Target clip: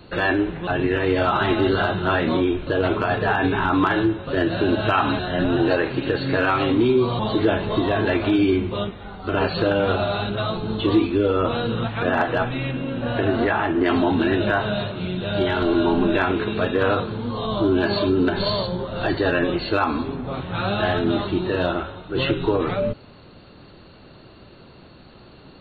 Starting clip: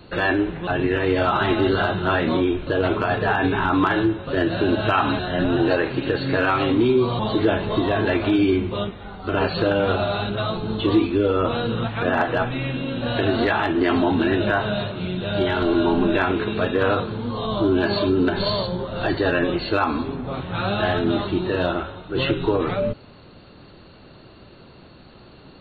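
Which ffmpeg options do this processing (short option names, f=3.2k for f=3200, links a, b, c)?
-filter_complex "[0:a]asettb=1/sr,asplit=3[a][b][c];[a]atrim=end=12.714[d];[b]atrim=start=12.71:end=13.86,asetpts=PTS-STARTPTS,afade=t=in:d=0.004:c=qsin,afade=t=out:st=1.146:d=0.004:c=qsin,lowpass=2.5k[e];[c]atrim=start=13.856[f];[d][e]acrossfade=d=0.004:c1=hsin:c2=qsin[g];[g][f]acrossfade=d=0.004:c1=qsin:c2=hsin"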